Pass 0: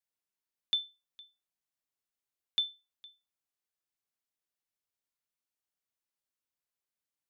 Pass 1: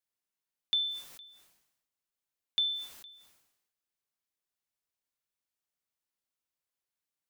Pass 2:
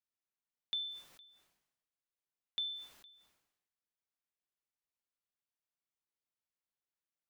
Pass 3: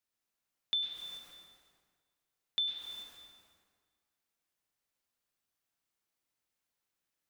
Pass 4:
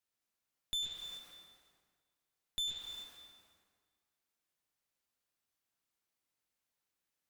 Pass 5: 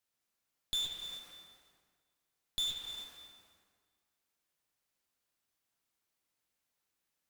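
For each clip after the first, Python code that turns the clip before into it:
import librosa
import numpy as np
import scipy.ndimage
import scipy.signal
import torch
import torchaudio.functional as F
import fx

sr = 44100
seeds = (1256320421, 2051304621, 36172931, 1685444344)

y1 = fx.sustainer(x, sr, db_per_s=62.0)
y2 = fx.high_shelf(y1, sr, hz=4900.0, db=-8.5)
y2 = y2 * librosa.db_to_amplitude(-5.5)
y3 = fx.rev_plate(y2, sr, seeds[0], rt60_s=1.5, hf_ratio=0.75, predelay_ms=90, drr_db=0.5)
y3 = y3 * librosa.db_to_amplitude(5.0)
y4 = fx.tube_stage(y3, sr, drive_db=35.0, bias=0.65)
y4 = y4 * librosa.db_to_amplitude(2.0)
y5 = fx.mod_noise(y4, sr, seeds[1], snr_db=15)
y5 = fx.doppler_dist(y5, sr, depth_ms=0.17)
y5 = y5 * librosa.db_to_amplitude(2.5)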